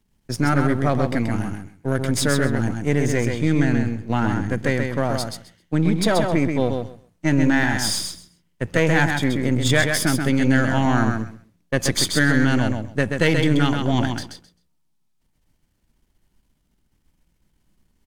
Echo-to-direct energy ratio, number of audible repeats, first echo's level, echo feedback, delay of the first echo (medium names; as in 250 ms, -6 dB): -5.0 dB, 2, -5.0 dB, 17%, 131 ms